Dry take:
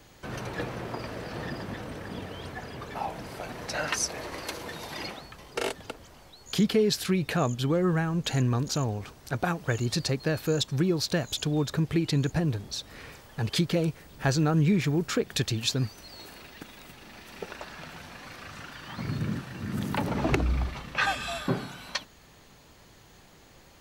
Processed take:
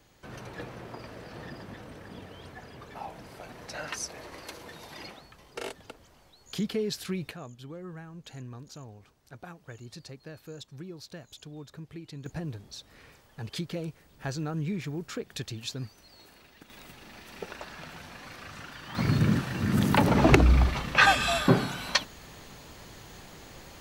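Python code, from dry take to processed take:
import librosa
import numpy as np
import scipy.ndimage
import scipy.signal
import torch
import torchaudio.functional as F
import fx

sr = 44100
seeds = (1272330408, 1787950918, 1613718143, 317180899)

y = fx.gain(x, sr, db=fx.steps((0.0, -7.0), (7.31, -17.0), (12.26, -9.0), (16.7, -1.0), (18.95, 7.0)))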